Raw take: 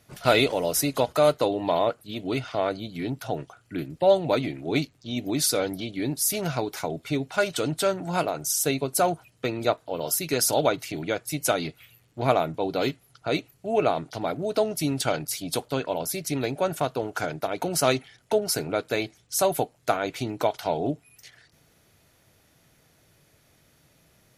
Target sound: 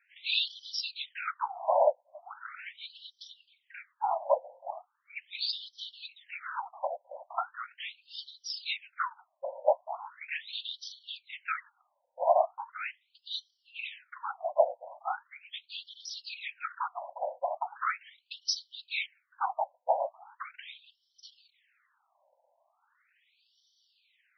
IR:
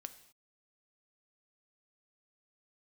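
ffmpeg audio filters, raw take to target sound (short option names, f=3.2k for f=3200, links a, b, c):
-af "afftfilt=real='hypot(re,im)*cos(2*PI*random(0))':imag='hypot(re,im)*sin(2*PI*random(1))':win_size=512:overlap=0.75,afftfilt=real='re*between(b*sr/1024,700*pow(4300/700,0.5+0.5*sin(2*PI*0.39*pts/sr))/1.41,700*pow(4300/700,0.5+0.5*sin(2*PI*0.39*pts/sr))*1.41)':imag='im*between(b*sr/1024,700*pow(4300/700,0.5+0.5*sin(2*PI*0.39*pts/sr))/1.41,700*pow(4300/700,0.5+0.5*sin(2*PI*0.39*pts/sr))*1.41)':win_size=1024:overlap=0.75,volume=6dB"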